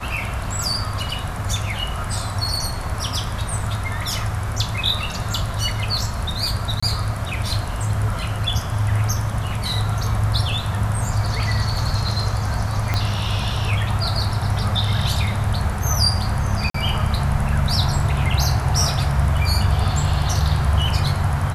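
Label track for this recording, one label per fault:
6.800000	6.830000	dropout 25 ms
12.940000	12.940000	pop -7 dBFS
16.700000	16.740000	dropout 44 ms

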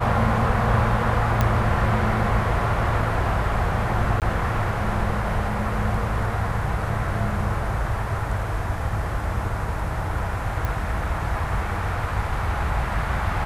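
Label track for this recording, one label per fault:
1.410000	1.410000	pop -7 dBFS
4.200000	4.220000	dropout 18 ms
10.650000	10.650000	pop

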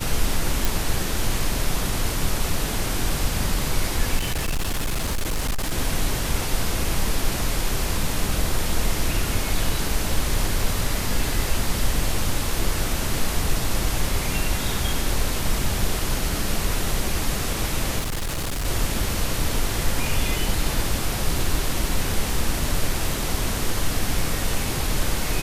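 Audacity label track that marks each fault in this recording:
0.650000	0.650000	pop
4.170000	5.730000	clipped -20 dBFS
17.990000	18.660000	clipped -23 dBFS

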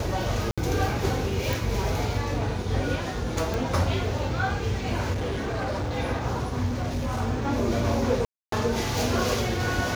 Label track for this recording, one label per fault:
0.510000	0.580000	dropout 66 ms
1.530000	1.530000	pop
3.540000	3.540000	pop
5.120000	5.990000	clipped -25.5 dBFS
6.660000	7.220000	clipped -24 dBFS
8.250000	8.520000	dropout 273 ms

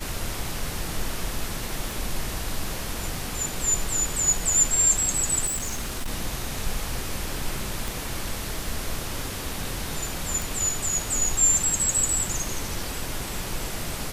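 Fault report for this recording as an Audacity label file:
1.910000	1.910000	pop
5.460000	6.090000	clipped -25 dBFS
7.880000	7.880000	pop
10.420000	10.420000	pop

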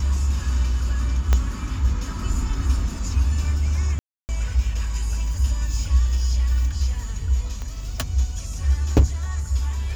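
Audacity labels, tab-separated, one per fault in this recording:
1.330000	1.330000	pop -7 dBFS
3.990000	4.290000	dropout 299 ms
7.620000	7.620000	pop -20 dBFS

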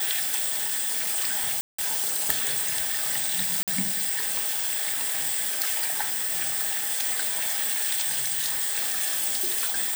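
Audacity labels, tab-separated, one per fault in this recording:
1.610000	1.780000	dropout 175 ms
3.630000	3.680000	dropout 47 ms

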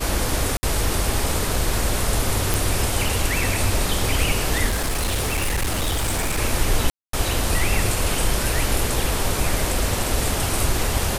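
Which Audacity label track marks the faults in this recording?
0.570000	0.630000	dropout 60 ms
2.540000	2.540000	pop
4.680000	6.390000	clipped -18.5 dBFS
6.900000	7.130000	dropout 233 ms

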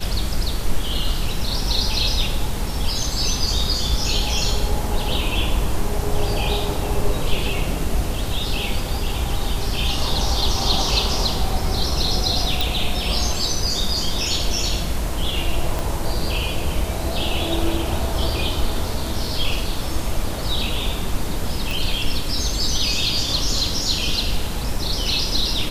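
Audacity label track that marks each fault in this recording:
12.610000	12.610000	pop
15.790000	15.790000	pop
21.710000	21.710000	pop

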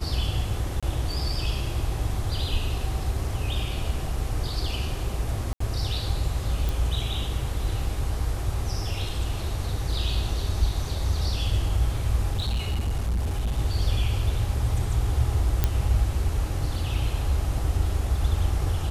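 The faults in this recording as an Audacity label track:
0.800000	0.830000	dropout 26 ms
5.530000	5.600000	dropout 74 ms
6.690000	6.690000	pop
12.330000	13.590000	clipped -22 dBFS
15.640000	15.640000	pop -7 dBFS

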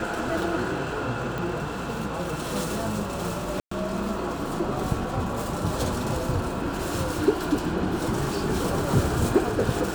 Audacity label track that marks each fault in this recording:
1.380000	1.380000	pop
3.600000	3.710000	dropout 114 ms

